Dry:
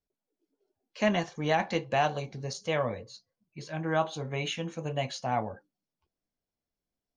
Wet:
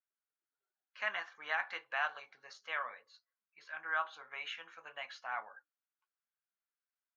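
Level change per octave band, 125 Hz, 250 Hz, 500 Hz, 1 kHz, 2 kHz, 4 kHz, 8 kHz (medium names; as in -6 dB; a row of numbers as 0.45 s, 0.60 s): under -40 dB, under -30 dB, -19.0 dB, -9.5 dB, -1.0 dB, -9.5 dB, -19.5 dB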